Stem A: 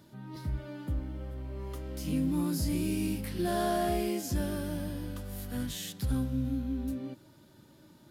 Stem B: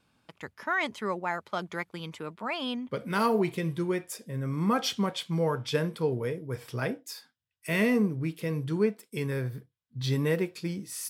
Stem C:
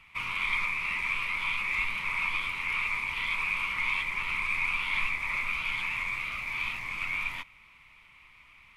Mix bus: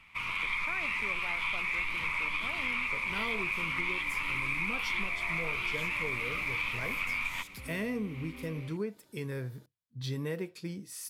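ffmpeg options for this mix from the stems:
ffmpeg -i stem1.wav -i stem2.wav -i stem3.wav -filter_complex "[0:a]bass=frequency=250:gain=-8,treble=frequency=4000:gain=3,acompressor=threshold=-38dB:ratio=6,adelay=1550,volume=-5dB[link_01];[1:a]volume=-5.5dB[link_02];[2:a]dynaudnorm=framelen=190:gausssize=5:maxgain=7dB,volume=-1.5dB[link_03];[link_01][link_02][link_03]amix=inputs=3:normalize=0,acompressor=threshold=-31dB:ratio=4" out.wav

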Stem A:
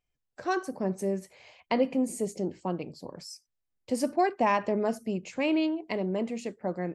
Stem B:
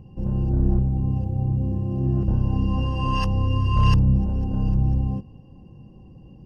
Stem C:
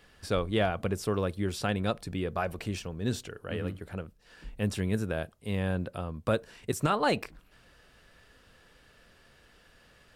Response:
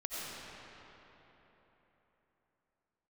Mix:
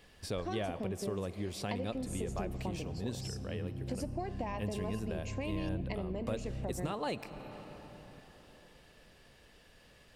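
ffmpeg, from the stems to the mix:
-filter_complex "[0:a]acompressor=threshold=-30dB:ratio=6,volume=1.5dB,asplit=2[link_01][link_02];[link_02]volume=-19dB[link_03];[1:a]adelay=1750,volume=-14.5dB[link_04];[2:a]volume=-1dB,asplit=2[link_05][link_06];[link_06]volume=-17.5dB[link_07];[3:a]atrim=start_sample=2205[link_08];[link_03][link_07]amix=inputs=2:normalize=0[link_09];[link_09][link_08]afir=irnorm=-1:irlink=0[link_10];[link_01][link_04][link_05][link_10]amix=inputs=4:normalize=0,equalizer=frequency=1400:width_type=o:width=0.44:gain=-8,acompressor=threshold=-40dB:ratio=2"

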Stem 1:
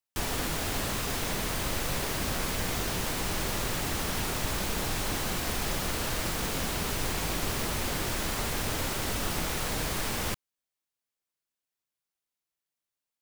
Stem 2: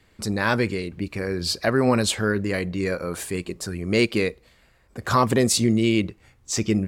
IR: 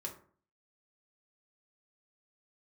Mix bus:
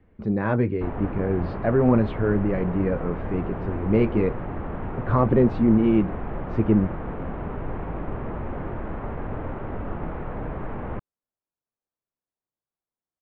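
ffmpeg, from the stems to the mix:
-filter_complex "[0:a]lowpass=1300,adelay=650,volume=3dB[link_01];[1:a]tiltshelf=frequency=1100:gain=5.5,flanger=delay=3.7:depth=7.7:regen=-56:speed=0.35:shape=triangular,volume=1.5dB[link_02];[link_01][link_02]amix=inputs=2:normalize=0,lowpass=frequency=2900:width=0.5412,lowpass=frequency=2900:width=1.3066,highshelf=frequency=2100:gain=-11"

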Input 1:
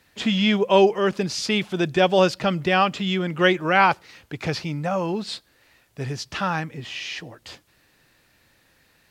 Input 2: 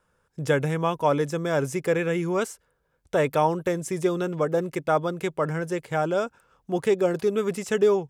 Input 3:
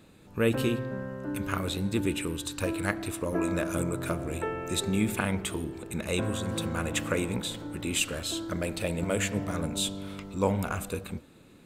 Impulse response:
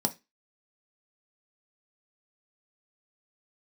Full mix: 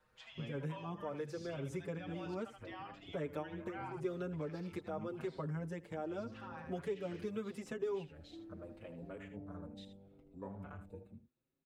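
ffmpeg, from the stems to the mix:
-filter_complex "[0:a]highpass=frequency=760:width=0.5412,highpass=frequency=760:width=1.3066,volume=-15dB,asplit=3[link_01][link_02][link_03];[link_02]volume=-7dB[link_04];[1:a]volume=-1.5dB,asplit=2[link_05][link_06];[link_06]volume=-22dB[link_07];[2:a]afwtdn=0.0158,volume=-14.5dB,asplit=2[link_08][link_09];[link_09]volume=-12dB[link_10];[link_03]apad=whole_len=356816[link_11];[link_05][link_11]sidechaincompress=threshold=-46dB:ratio=8:attack=16:release=166[link_12];[link_04][link_07][link_10]amix=inputs=3:normalize=0,aecho=0:1:78:1[link_13];[link_01][link_12][link_08][link_13]amix=inputs=4:normalize=0,highshelf=frequency=3900:gain=-10.5,acrossover=split=420|1100[link_14][link_15][link_16];[link_14]acompressor=threshold=-39dB:ratio=4[link_17];[link_15]acompressor=threshold=-47dB:ratio=4[link_18];[link_16]acompressor=threshold=-52dB:ratio=4[link_19];[link_17][link_18][link_19]amix=inputs=3:normalize=0,asplit=2[link_20][link_21];[link_21]adelay=6.1,afreqshift=0.81[link_22];[link_20][link_22]amix=inputs=2:normalize=1"

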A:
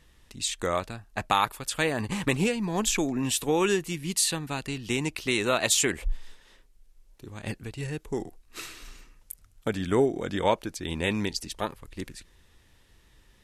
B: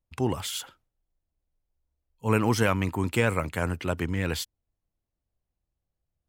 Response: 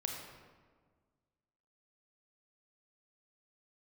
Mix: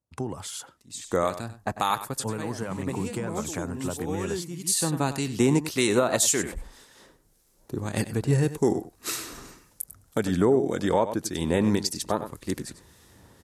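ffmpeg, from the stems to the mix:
-filter_complex "[0:a]dynaudnorm=framelen=250:gausssize=5:maxgain=12dB,acrossover=split=1700[link_01][link_02];[link_01]aeval=exprs='val(0)*(1-0.5/2+0.5/2*cos(2*PI*1.8*n/s))':channel_layout=same[link_03];[link_02]aeval=exprs='val(0)*(1-0.5/2-0.5/2*cos(2*PI*1.8*n/s))':channel_layout=same[link_04];[link_03][link_04]amix=inputs=2:normalize=0,adelay=500,volume=2dB,asplit=2[link_05][link_06];[link_06]volume=-14dB[link_07];[1:a]lowpass=frequency=11000:width=0.5412,lowpass=frequency=11000:width=1.3066,acompressor=threshold=-28dB:ratio=12,volume=2dB,asplit=2[link_08][link_09];[link_09]apad=whole_len=614456[link_10];[link_05][link_10]sidechaincompress=threshold=-50dB:ratio=6:attack=28:release=426[link_11];[link_07]aecho=0:1:96:1[link_12];[link_11][link_08][link_12]amix=inputs=3:normalize=0,highpass=100,equalizer=frequency=2700:width=1:gain=-11,alimiter=limit=-11dB:level=0:latency=1:release=175"

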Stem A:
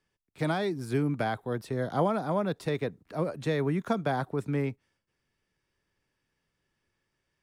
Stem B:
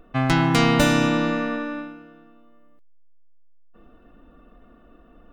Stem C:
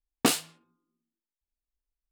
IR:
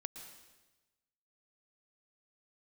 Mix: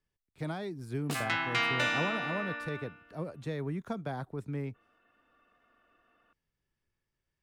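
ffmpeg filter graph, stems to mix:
-filter_complex "[0:a]lowshelf=frequency=110:gain=11,volume=-9.5dB[link_01];[1:a]bandpass=frequency=2100:width_type=q:width=1.3:csg=0,adelay=1000,volume=-3.5dB[link_02];[2:a]adelay=850,volume=-14.5dB[link_03];[link_01][link_02][link_03]amix=inputs=3:normalize=0"

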